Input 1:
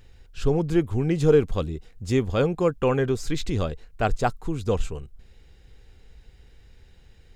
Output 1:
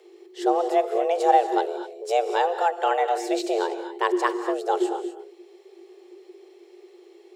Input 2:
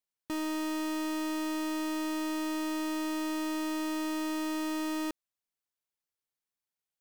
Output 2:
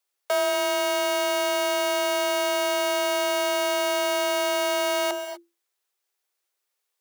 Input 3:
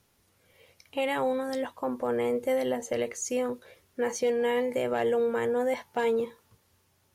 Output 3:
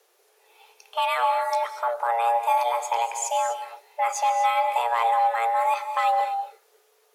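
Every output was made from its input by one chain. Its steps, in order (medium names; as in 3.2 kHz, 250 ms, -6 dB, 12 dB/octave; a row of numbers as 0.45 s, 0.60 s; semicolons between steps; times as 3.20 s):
frequency shift +340 Hz; gated-style reverb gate 270 ms rising, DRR 8.5 dB; normalise loudness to -24 LUFS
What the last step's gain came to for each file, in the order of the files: -0.5 dB, +11.0 dB, +4.5 dB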